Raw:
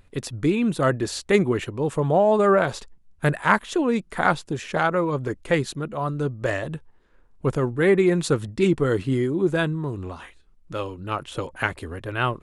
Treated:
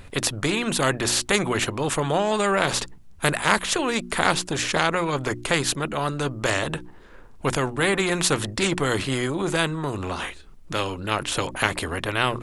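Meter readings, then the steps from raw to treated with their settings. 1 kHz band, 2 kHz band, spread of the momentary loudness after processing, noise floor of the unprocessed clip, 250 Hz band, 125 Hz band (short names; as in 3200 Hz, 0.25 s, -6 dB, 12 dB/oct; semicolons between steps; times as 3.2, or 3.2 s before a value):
+0.5 dB, +3.0 dB, 7 LU, -54 dBFS, -3.0 dB, -2.5 dB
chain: notches 60/120/180/240/300/360 Hz; spectral compressor 2:1; gain +1 dB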